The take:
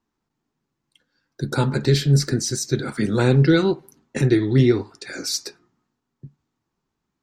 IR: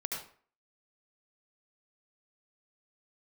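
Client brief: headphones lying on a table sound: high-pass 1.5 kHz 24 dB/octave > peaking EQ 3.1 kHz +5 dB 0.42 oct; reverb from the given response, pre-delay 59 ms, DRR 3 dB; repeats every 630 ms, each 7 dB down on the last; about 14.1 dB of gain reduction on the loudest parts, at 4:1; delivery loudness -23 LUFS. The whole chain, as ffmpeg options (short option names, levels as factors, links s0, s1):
-filter_complex "[0:a]acompressor=threshold=0.0355:ratio=4,aecho=1:1:630|1260|1890|2520|3150:0.447|0.201|0.0905|0.0407|0.0183,asplit=2[s0][s1];[1:a]atrim=start_sample=2205,adelay=59[s2];[s1][s2]afir=irnorm=-1:irlink=0,volume=0.531[s3];[s0][s3]amix=inputs=2:normalize=0,highpass=f=1500:w=0.5412,highpass=f=1500:w=1.3066,equalizer=f=3100:t=o:w=0.42:g=5,volume=4.47"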